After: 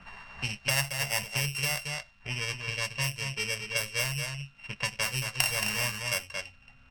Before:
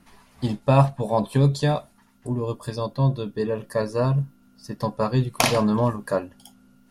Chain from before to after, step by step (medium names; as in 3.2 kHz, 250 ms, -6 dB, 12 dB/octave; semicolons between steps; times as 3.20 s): sorted samples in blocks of 16 samples; band-stop 3.5 kHz, Q 6.6; on a send: delay 225 ms -7 dB; on the sum: crackle 470 per s -53 dBFS; amplifier tone stack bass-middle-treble 10-0-10; level-controlled noise filter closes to 1.6 kHz, open at -27 dBFS; three bands compressed up and down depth 70%